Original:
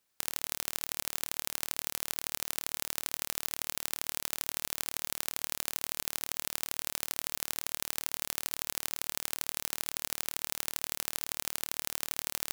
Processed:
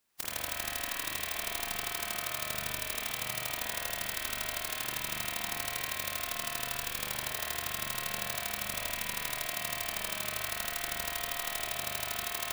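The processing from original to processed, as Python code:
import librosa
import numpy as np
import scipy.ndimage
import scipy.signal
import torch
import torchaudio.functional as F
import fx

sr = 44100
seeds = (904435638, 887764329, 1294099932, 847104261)

y = fx.pitch_keep_formants(x, sr, semitones=1.5)
y = fx.rev_spring(y, sr, rt60_s=3.1, pass_ms=(40,), chirp_ms=60, drr_db=-6.0)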